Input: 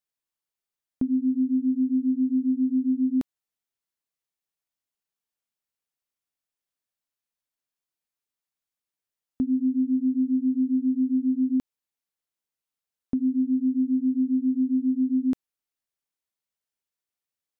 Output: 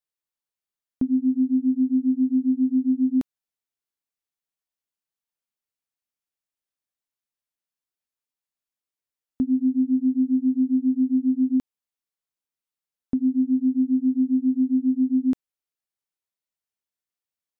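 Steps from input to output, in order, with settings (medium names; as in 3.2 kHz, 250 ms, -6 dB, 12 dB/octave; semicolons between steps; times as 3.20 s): upward expansion 1.5:1, over -33 dBFS; trim +3 dB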